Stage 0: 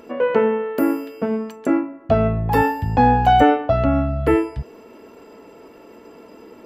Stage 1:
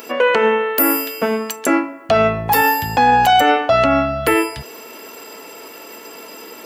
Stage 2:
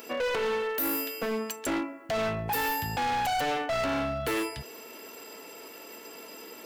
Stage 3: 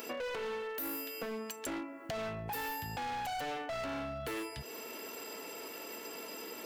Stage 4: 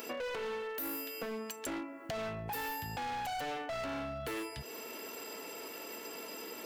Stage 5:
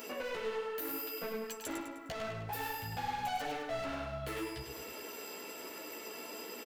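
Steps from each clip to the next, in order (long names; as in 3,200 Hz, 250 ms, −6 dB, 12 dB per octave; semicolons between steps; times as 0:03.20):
spectral tilt +4.5 dB per octave; boost into a limiter +13.5 dB; level −4 dB
parametric band 1,100 Hz −2.5 dB 1.3 octaves; hard clipping −18 dBFS, distortion −7 dB; level −8.5 dB
downward compressor 5 to 1, threshold −40 dBFS, peak gain reduction 11 dB; level +1 dB
no processing that can be heard
multi-voice chorus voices 4, 1.1 Hz, delay 13 ms, depth 3.7 ms; on a send: repeating echo 102 ms, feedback 46%, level −7 dB; on the sum: level +1.5 dB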